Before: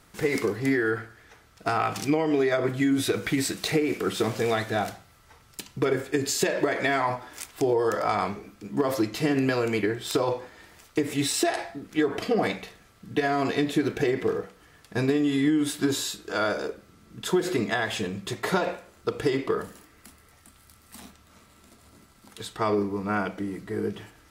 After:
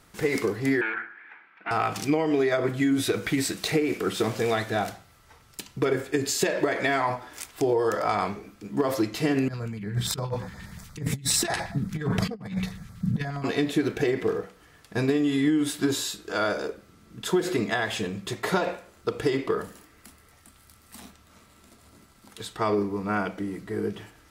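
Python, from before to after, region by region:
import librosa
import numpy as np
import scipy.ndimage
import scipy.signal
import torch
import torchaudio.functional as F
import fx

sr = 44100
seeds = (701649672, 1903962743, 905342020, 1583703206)

y = fx.chain(x, sr, fx.clip_hard(threshold_db=-28.5),
    fx.cabinet(low_hz=240.0, low_slope=24, high_hz=2700.0, hz=(250.0, 450.0, 630.0, 900.0, 1600.0, 2300.0), db=(-7, -10, -9, 5, 9, 10)), at=(0.81, 1.71))
y = fx.chain(y, sr, fx.low_shelf_res(hz=240.0, db=10.0, q=3.0),
    fx.over_compress(threshold_db=-27.0, ratio=-0.5),
    fx.filter_lfo_notch(shape='square', hz=8.5, low_hz=640.0, high_hz=2800.0, q=1.3), at=(9.48, 13.44))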